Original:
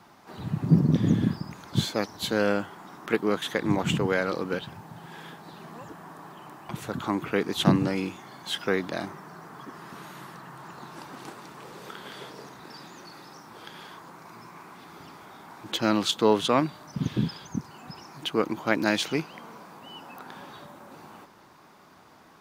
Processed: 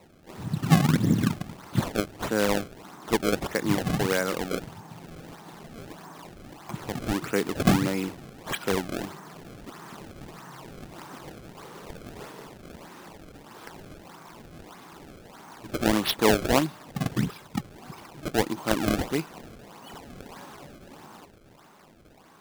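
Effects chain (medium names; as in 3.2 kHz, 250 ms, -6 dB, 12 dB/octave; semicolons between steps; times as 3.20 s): decimation with a swept rate 27×, swing 160% 1.6 Hz; 17.26–17.76 s: three bands expanded up and down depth 40%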